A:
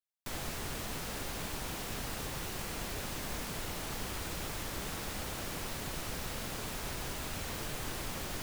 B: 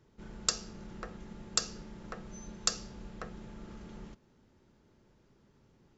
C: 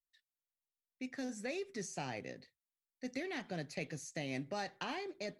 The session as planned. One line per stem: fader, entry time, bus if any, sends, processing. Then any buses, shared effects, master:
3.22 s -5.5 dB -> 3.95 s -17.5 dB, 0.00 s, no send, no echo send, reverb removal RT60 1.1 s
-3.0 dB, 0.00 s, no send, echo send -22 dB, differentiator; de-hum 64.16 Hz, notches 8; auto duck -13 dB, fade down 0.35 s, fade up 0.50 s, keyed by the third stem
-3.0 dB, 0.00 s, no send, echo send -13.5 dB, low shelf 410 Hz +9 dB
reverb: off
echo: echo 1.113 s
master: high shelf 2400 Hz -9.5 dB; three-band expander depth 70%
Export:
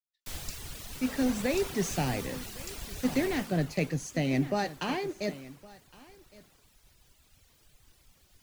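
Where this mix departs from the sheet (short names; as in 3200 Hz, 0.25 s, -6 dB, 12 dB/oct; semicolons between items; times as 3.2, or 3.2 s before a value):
stem A -5.5 dB -> +2.5 dB; stem C -3.0 dB -> +6.5 dB; master: missing high shelf 2400 Hz -9.5 dB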